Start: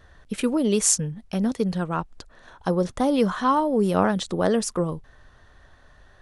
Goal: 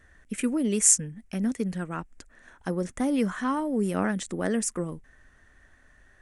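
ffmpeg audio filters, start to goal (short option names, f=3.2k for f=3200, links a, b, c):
-af "equalizer=f=125:t=o:w=1:g=-5,equalizer=f=250:t=o:w=1:g=5,equalizer=f=500:t=o:w=1:g=-3,equalizer=f=1k:t=o:w=1:g=-6,equalizer=f=2k:t=o:w=1:g=9,equalizer=f=4k:t=o:w=1:g=-10,equalizer=f=8k:t=o:w=1:g=10,volume=-5.5dB"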